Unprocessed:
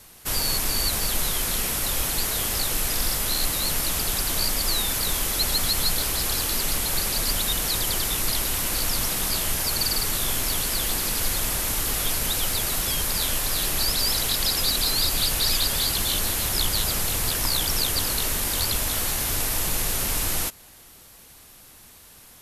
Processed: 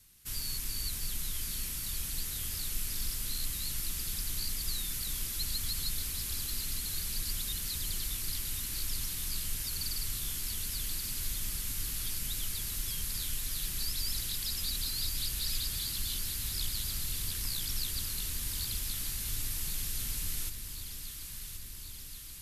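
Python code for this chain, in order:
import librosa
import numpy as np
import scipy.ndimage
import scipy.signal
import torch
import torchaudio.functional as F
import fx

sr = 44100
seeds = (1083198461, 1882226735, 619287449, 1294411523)

y = fx.tone_stack(x, sr, knobs='6-0-2')
y = fx.echo_alternate(y, sr, ms=539, hz=830.0, feedback_pct=83, wet_db=-7)
y = F.gain(torch.from_numpy(y), 2.5).numpy()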